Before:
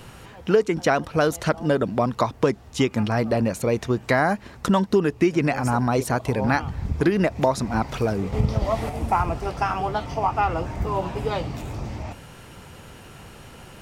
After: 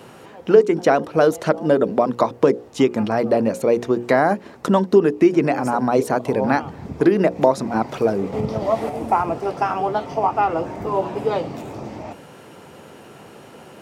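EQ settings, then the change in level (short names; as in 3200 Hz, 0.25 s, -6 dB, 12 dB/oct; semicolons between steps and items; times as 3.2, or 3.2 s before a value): HPF 140 Hz 12 dB/oct; bell 430 Hz +9.5 dB 2.5 oct; notches 60/120/180/240/300/360/420/480/540 Hz; -2.5 dB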